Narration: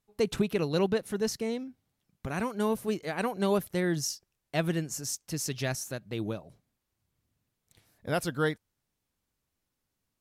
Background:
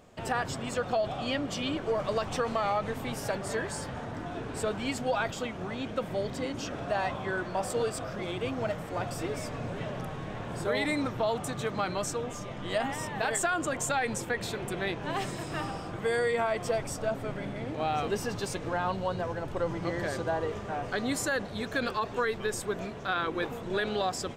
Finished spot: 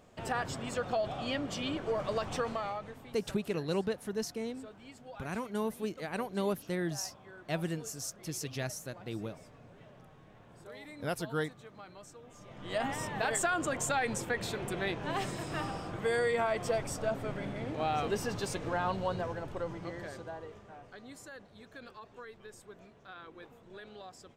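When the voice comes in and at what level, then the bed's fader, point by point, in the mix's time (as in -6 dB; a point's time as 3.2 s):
2.95 s, -5.5 dB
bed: 2.43 s -3.5 dB
3.24 s -19.5 dB
12.21 s -19.5 dB
12.84 s -2 dB
19.13 s -2 dB
20.98 s -19 dB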